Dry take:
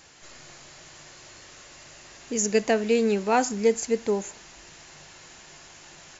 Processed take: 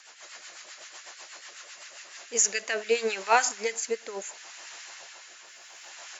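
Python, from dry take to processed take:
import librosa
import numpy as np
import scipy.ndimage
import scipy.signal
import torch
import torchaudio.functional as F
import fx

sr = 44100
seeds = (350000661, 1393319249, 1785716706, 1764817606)

y = fx.filter_lfo_highpass(x, sr, shape='sine', hz=7.1, low_hz=630.0, high_hz=1600.0, q=1.2)
y = fx.mod_noise(y, sr, seeds[0], snr_db=29, at=(5.45, 5.89))
y = fx.rotary_switch(y, sr, hz=8.0, then_hz=0.7, switch_at_s=1.75)
y = y * 10.0 ** (4.5 / 20.0)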